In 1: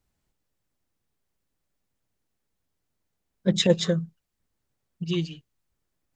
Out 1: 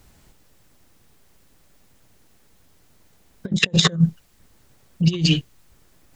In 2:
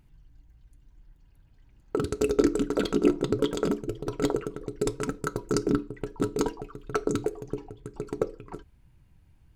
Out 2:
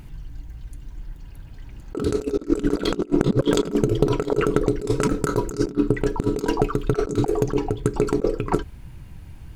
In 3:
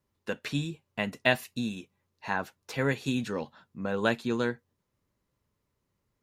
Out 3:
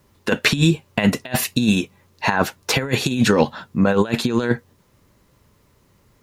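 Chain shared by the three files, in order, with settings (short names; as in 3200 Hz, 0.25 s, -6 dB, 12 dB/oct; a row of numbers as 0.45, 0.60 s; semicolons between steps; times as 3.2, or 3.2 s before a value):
negative-ratio compressor -33 dBFS, ratio -0.5; normalise peaks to -1.5 dBFS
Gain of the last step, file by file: +14.5, +13.0, +16.5 dB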